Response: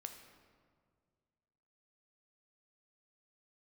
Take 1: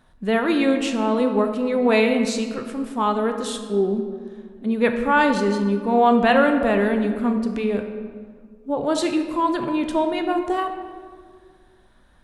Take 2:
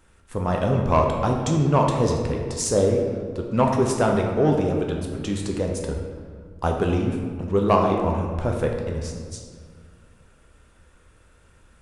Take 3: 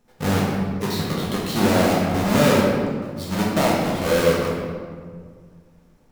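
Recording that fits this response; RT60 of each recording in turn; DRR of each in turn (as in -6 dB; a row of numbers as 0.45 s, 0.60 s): 1; 1.9 s, 1.9 s, 1.9 s; 5.0 dB, 1.0 dB, -5.5 dB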